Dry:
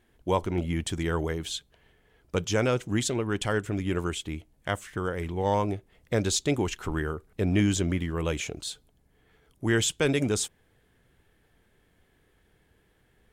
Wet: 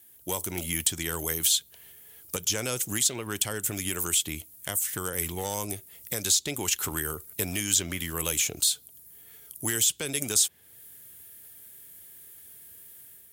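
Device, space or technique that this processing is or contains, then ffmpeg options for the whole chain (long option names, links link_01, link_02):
FM broadcast chain: -filter_complex "[0:a]highpass=frequency=65:width=0.5412,highpass=frequency=65:width=1.3066,dynaudnorm=framelen=130:gausssize=5:maxgain=6dB,acrossover=split=610|4900[link_01][link_02][link_03];[link_01]acompressor=threshold=-26dB:ratio=4[link_04];[link_02]acompressor=threshold=-30dB:ratio=4[link_05];[link_03]acompressor=threshold=-45dB:ratio=4[link_06];[link_04][link_05][link_06]amix=inputs=3:normalize=0,aemphasis=mode=production:type=75fm,alimiter=limit=-14dB:level=0:latency=1:release=266,asoftclip=type=hard:threshold=-17dB,lowpass=frequency=15000:width=0.5412,lowpass=frequency=15000:width=1.3066,aemphasis=mode=production:type=75fm,volume=-5dB"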